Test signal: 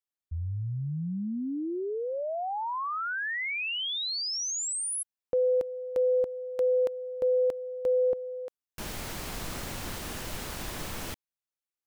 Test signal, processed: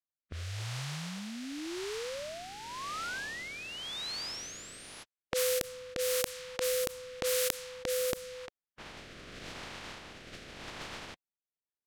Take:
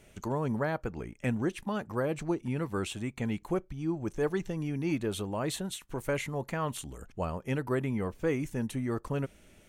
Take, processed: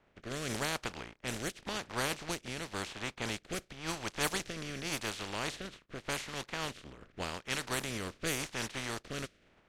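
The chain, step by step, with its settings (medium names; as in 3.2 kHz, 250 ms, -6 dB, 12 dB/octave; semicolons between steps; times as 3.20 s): spectral contrast reduction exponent 0.26; level-controlled noise filter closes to 1.6 kHz, open at -23.5 dBFS; rotary cabinet horn 0.9 Hz; trim -1.5 dB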